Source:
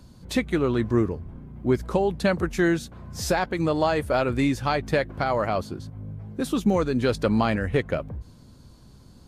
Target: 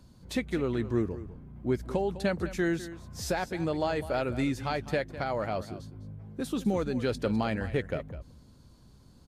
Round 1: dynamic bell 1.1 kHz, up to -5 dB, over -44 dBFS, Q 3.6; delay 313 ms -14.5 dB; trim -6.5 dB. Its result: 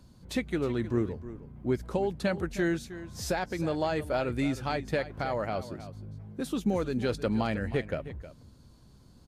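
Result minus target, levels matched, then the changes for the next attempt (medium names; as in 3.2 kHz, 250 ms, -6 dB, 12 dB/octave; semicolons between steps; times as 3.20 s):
echo 109 ms late
change: delay 204 ms -14.5 dB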